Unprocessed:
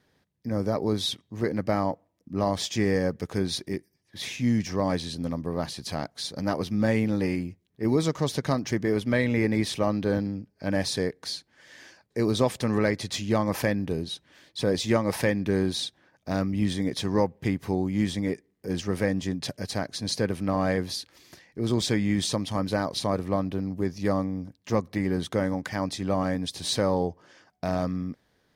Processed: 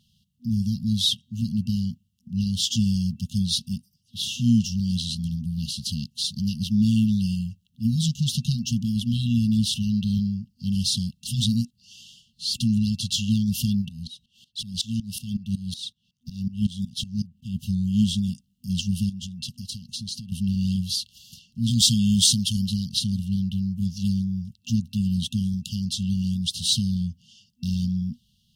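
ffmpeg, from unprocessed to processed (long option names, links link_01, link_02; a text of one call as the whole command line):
ffmpeg -i in.wav -filter_complex "[0:a]asplit=3[link_01][link_02][link_03];[link_01]afade=type=out:start_time=13.81:duration=0.02[link_04];[link_02]aeval=exprs='val(0)*pow(10,-20*if(lt(mod(-5.4*n/s,1),2*abs(-5.4)/1000),1-mod(-5.4*n/s,1)/(2*abs(-5.4)/1000),(mod(-5.4*n/s,1)-2*abs(-5.4)/1000)/(1-2*abs(-5.4)/1000))/20)':channel_layout=same,afade=type=in:start_time=13.81:duration=0.02,afade=type=out:start_time=17.54:duration=0.02[link_05];[link_03]afade=type=in:start_time=17.54:duration=0.02[link_06];[link_04][link_05][link_06]amix=inputs=3:normalize=0,asettb=1/sr,asplit=3[link_07][link_08][link_09];[link_07]atrim=end=19.094[link_10];[link_08]atrim=start=19.09:end=20.32,asetpts=PTS-STARTPTS,afade=type=in:duration=0.004:curve=qsin,afade=type=out:start_time=1.226:duration=0.004:curve=qsin,acompressor=threshold=-34dB:ratio=16:attack=3.2:release=140:knee=1:detection=peak[link_11];[link_09]atrim=start=20.316[link_12];[link_10][link_11]acrossfade=duration=0.004:curve1=hsin:curve2=qsin[link_13];[link_13][link_12]acrossfade=duration=0.004:curve1=qsin:curve2=hsin,asettb=1/sr,asplit=3[link_14][link_15][link_16];[link_14]atrim=end=21.714[link_17];[link_15]atrim=start=21.71:end=22.66,asetpts=PTS-STARTPTS,afade=type=in:duration=0.004:curve=qsin,afade=type=out:start_time=0.946:duration=0.004:curve=qsin,highshelf=frequency=4000:gain=9[link_18];[link_16]atrim=start=22.656[link_19];[link_17][link_18]acrossfade=duration=0.004:curve1=hsin:curve2=qsin[link_20];[link_20][link_19]acrossfade=duration=0.004:curve1=qsin:curve2=hsin,asplit=3[link_21][link_22][link_23];[link_21]atrim=end=11.272[link_24];[link_22]atrim=start=11.268:end=12.542,asetpts=PTS-STARTPTS,areverse[link_25];[link_23]atrim=start=12.538[link_26];[link_24][link_25]acrossfade=duration=0.004:curve1=hsin:curve2=hsin[link_27];[link_27][link_26]acrossfade=duration=0.004:curve1=hsin:curve2=hsin,afftfilt=real='re*(1-between(b*sr/4096,240,2700))':imag='im*(1-between(b*sr/4096,240,2700))':win_size=4096:overlap=0.75,equalizer=frequency=2700:width=2.4:gain=4.5,volume=6dB" out.wav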